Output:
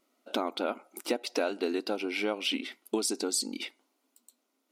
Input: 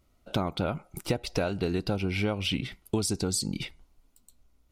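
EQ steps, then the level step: brick-wall FIR high-pass 220 Hz; 0.0 dB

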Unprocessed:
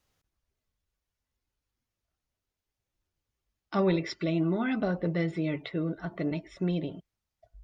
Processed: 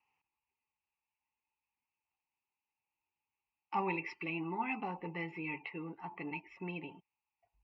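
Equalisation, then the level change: double band-pass 1500 Hz, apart 1.6 oct; air absorption 120 m; fixed phaser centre 1500 Hz, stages 4; +15.0 dB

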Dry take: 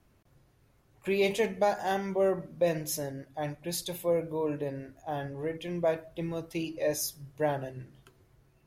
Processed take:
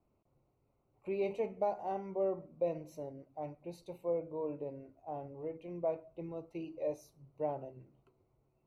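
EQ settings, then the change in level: running mean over 26 samples; low shelf 290 Hz -11.5 dB; -2.5 dB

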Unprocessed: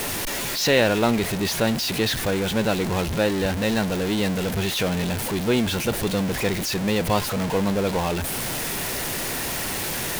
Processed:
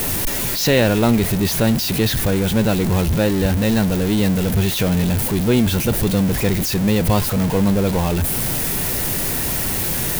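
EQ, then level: low shelf 260 Hz +11.5 dB; high shelf 10000 Hz +12 dB; 0.0 dB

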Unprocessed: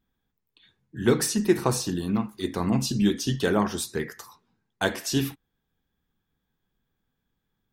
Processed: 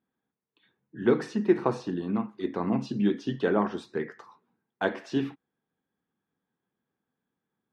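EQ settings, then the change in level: BPF 210–3300 Hz; high shelf 2500 Hz -11.5 dB; 0.0 dB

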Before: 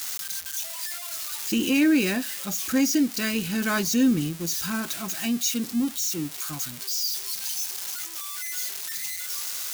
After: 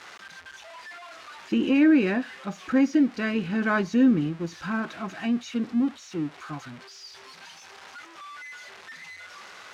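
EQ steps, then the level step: LPF 1700 Hz 12 dB/oct; low shelf 69 Hz -7 dB; low shelf 230 Hz -4 dB; +3.5 dB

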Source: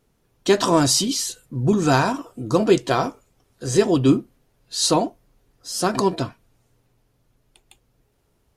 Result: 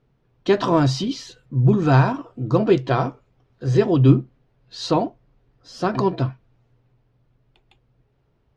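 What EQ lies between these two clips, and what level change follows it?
air absorption 230 m; bell 130 Hz +10.5 dB 0.22 oct; 0.0 dB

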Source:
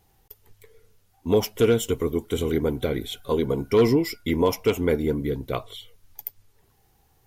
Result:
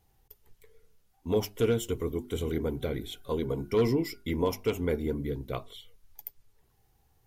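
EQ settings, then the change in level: low shelf 150 Hz +5.5 dB; notches 50/100/150/200/250/300/350/400 Hz; -7.5 dB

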